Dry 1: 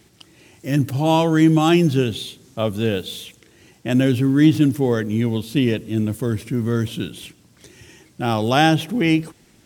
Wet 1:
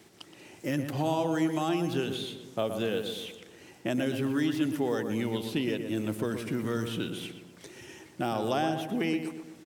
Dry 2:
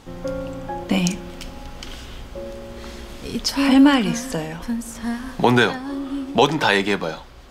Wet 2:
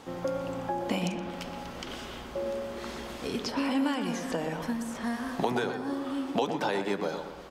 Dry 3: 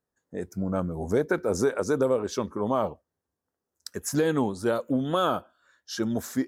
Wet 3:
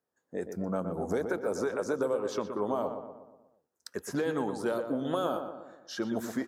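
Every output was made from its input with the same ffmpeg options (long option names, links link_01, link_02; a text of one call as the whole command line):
ffmpeg -i in.wav -filter_complex "[0:a]highpass=frequency=540:poles=1,tiltshelf=frequency=1200:gain=4.5,acrossover=split=750|4400[link_01][link_02][link_03];[link_01]acompressor=threshold=-31dB:ratio=4[link_04];[link_02]acompressor=threshold=-39dB:ratio=4[link_05];[link_03]acompressor=threshold=-49dB:ratio=4[link_06];[link_04][link_05][link_06]amix=inputs=3:normalize=0,asplit=2[link_07][link_08];[link_08]adelay=121,lowpass=frequency=2000:poles=1,volume=-7dB,asplit=2[link_09][link_10];[link_10]adelay=121,lowpass=frequency=2000:poles=1,volume=0.52,asplit=2[link_11][link_12];[link_12]adelay=121,lowpass=frequency=2000:poles=1,volume=0.52,asplit=2[link_13][link_14];[link_14]adelay=121,lowpass=frequency=2000:poles=1,volume=0.52,asplit=2[link_15][link_16];[link_16]adelay=121,lowpass=frequency=2000:poles=1,volume=0.52,asplit=2[link_17][link_18];[link_18]adelay=121,lowpass=frequency=2000:poles=1,volume=0.52[link_19];[link_07][link_09][link_11][link_13][link_15][link_17][link_19]amix=inputs=7:normalize=0,volume=1dB" out.wav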